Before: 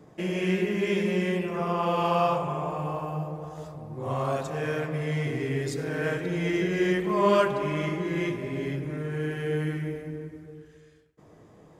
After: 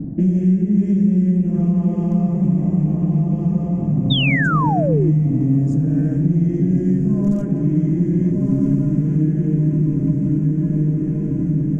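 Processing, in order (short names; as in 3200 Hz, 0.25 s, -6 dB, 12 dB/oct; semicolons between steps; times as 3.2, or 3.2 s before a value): rattling part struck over -33 dBFS, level -31 dBFS; in parallel at -6 dB: wrapped overs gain 12.5 dB; on the sum: low-pass opened by the level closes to 2700 Hz, open at -22.5 dBFS; tilt -4 dB/oct; on a send: diffused feedback echo 1.352 s, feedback 53%, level -5 dB; on the sum: compressor 4:1, threshold -29 dBFS, peak gain reduction 17 dB; EQ curve 110 Hz 0 dB, 280 Hz +11 dB, 400 Hz -11 dB, 680 Hz -9 dB, 1100 Hz -19 dB, 1700 Hz -11 dB, 2500 Hz -16 dB, 4100 Hz -15 dB, 6600 Hz +8 dB, 9500 Hz +1 dB; painted sound fall, 4.1–5.12, 300–3800 Hz -29 dBFS; mismatched tape noise reduction decoder only; gain +8.5 dB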